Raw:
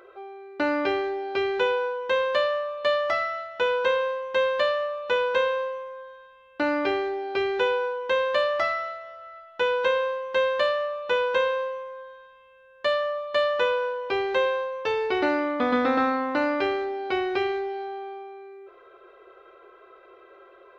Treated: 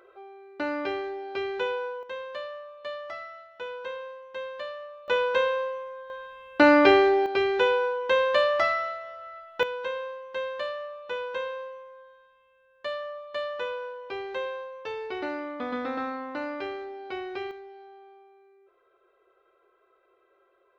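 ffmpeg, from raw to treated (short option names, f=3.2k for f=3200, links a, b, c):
-af "asetnsamples=n=441:p=0,asendcmd='2.03 volume volume -13dB;5.08 volume volume -1dB;6.1 volume volume 8dB;7.26 volume volume 1dB;9.63 volume volume -9dB;17.51 volume volume -15dB',volume=-5.5dB"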